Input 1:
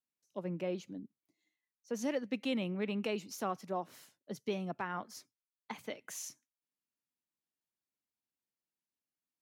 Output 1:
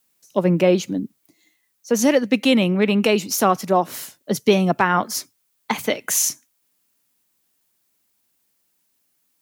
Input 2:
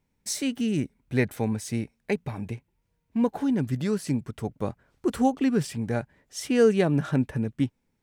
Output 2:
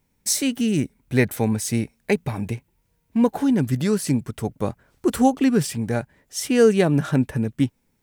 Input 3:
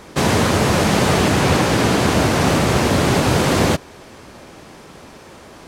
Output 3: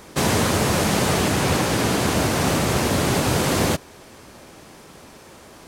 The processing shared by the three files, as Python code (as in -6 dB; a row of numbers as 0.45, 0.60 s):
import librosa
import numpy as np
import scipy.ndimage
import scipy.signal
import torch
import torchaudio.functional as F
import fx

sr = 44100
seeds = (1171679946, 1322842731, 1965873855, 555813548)

y = fx.high_shelf(x, sr, hz=7900.0, db=9.5)
y = fx.rider(y, sr, range_db=3, speed_s=2.0)
y = y * 10.0 ** (-22 / 20.0) / np.sqrt(np.mean(np.square(y)))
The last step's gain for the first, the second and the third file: +19.5, +4.0, -4.5 dB